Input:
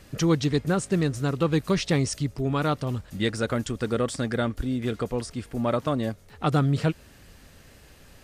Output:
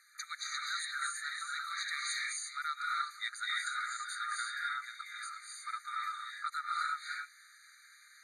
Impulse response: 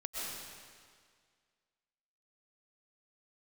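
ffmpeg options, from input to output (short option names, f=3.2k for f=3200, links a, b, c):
-filter_complex "[1:a]atrim=start_sample=2205,afade=t=out:st=0.23:d=0.01,atrim=end_sample=10584,asetrate=22050,aresample=44100[a];[0:a][a]afir=irnorm=-1:irlink=0,asplit=2[b][c];[c]volume=11.5dB,asoftclip=hard,volume=-11.5dB,volume=-5dB[d];[b][d]amix=inputs=2:normalize=0,afftfilt=real='re*eq(mod(floor(b*sr/1024/1200),2),1)':imag='im*eq(mod(floor(b*sr/1024/1200),2),1)':win_size=1024:overlap=0.75,volume=-8.5dB"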